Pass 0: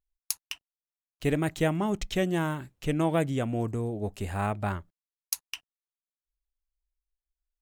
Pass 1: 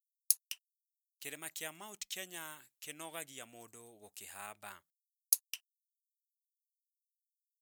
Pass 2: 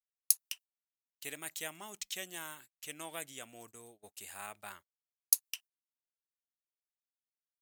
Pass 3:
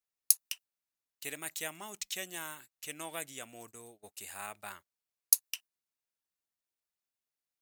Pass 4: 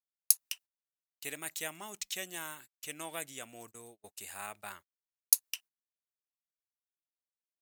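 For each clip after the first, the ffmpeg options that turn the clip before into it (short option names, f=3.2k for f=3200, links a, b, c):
-af "aderivative"
-af "agate=range=-23dB:threshold=-57dB:ratio=16:detection=peak,volume=2dB"
-af "bandreject=f=3.2k:w=19,volume=2.5dB"
-af "agate=range=-19dB:threshold=-54dB:ratio=16:detection=peak"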